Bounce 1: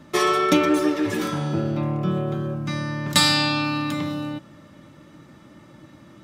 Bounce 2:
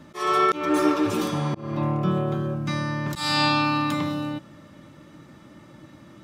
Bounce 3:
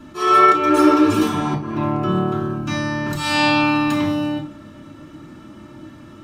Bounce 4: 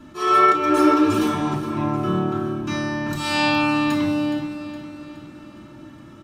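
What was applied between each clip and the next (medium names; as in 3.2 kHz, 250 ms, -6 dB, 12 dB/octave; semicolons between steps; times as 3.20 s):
spectral replace 0.78–1.78 s, 950–2500 Hz both; dynamic bell 1 kHz, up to +7 dB, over -39 dBFS, Q 1.9; slow attack 292 ms
reverberation RT60 0.45 s, pre-delay 3 ms, DRR -2 dB
feedback delay 417 ms, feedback 50%, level -13 dB; trim -3 dB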